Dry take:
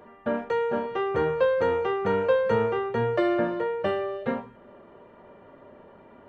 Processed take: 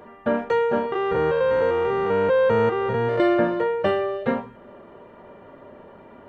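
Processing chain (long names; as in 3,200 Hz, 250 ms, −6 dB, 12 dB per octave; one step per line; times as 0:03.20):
0:00.92–0:03.20: spectrum averaged block by block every 200 ms
level +5 dB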